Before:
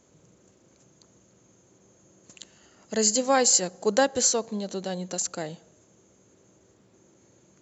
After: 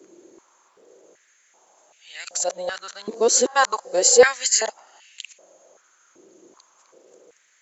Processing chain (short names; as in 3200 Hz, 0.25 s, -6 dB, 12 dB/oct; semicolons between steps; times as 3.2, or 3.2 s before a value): whole clip reversed; stepped high-pass 2.6 Hz 350–2400 Hz; gain +3.5 dB